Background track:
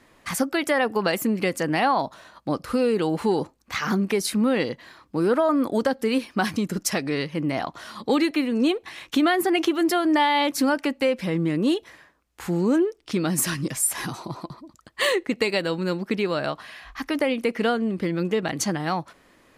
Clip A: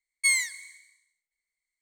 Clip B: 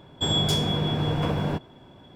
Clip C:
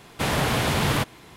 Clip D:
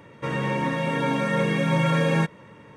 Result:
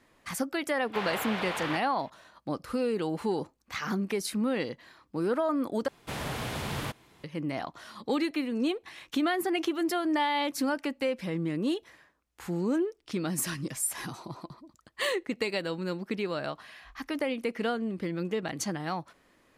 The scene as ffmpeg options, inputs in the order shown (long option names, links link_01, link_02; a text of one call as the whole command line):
ffmpeg -i bed.wav -i cue0.wav -i cue1.wav -i cue2.wav -filter_complex "[3:a]asplit=2[link_01][link_02];[0:a]volume=-7.5dB[link_03];[link_01]acrossover=split=500 3900:gain=0.0891 1 0.0891[link_04][link_05][link_06];[link_04][link_05][link_06]amix=inputs=3:normalize=0[link_07];[link_03]asplit=2[link_08][link_09];[link_08]atrim=end=5.884[link_10];[link_02]atrim=end=1.36,asetpts=PTS-STARTPTS,volume=-11.5dB[link_11];[link_09]atrim=start=7.236[link_12];[link_07]atrim=end=1.36,asetpts=PTS-STARTPTS,volume=-7dB,afade=type=in:duration=0.004:curve=hsin,afade=type=out:start_time=1.356:duration=0.004:curve=hsin,adelay=740[link_13];[link_10][link_11]acrossfade=duration=0.004:curve1=hsin:curve2=hsin[link_14];[link_14][link_12]acrossfade=duration=0.004:curve1=hsin:curve2=hsin[link_15];[link_15][link_13]amix=inputs=2:normalize=0" out.wav